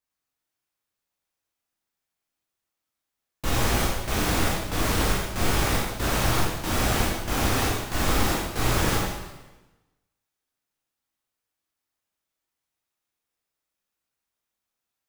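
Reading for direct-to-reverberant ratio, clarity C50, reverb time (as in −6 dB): −5.5 dB, 0.0 dB, 1.1 s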